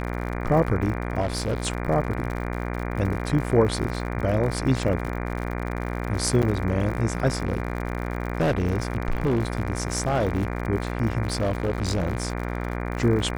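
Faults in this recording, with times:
mains buzz 60 Hz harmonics 40 −29 dBFS
surface crackle 75 per second −31 dBFS
0:01.20–0:01.67: clipping −21 dBFS
0:06.42–0:06.43: drop-out 7.7 ms
0:07.45–0:10.58: clipping −18 dBFS
0:11.24–0:12.33: clipping −19.5 dBFS

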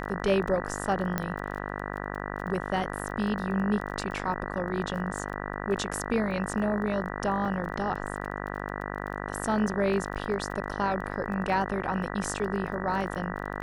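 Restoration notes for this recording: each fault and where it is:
mains buzz 50 Hz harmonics 39 −35 dBFS
surface crackle 19 per second −37 dBFS
0:01.18: click −13 dBFS
0:07.45: drop-out 3.5 ms

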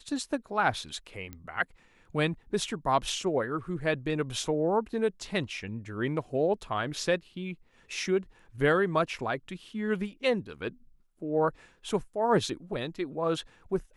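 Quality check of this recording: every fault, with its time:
0:01.33: click −26 dBFS

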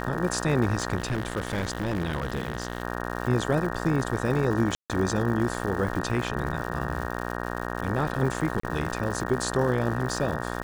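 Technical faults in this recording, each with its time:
mains buzz 60 Hz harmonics 31 −32 dBFS
surface crackle 230 per second −33 dBFS
0:00.97–0:02.83: clipping −22.5 dBFS
0:04.75–0:04.90: drop-out 147 ms
0:08.60–0:08.63: drop-out 34 ms

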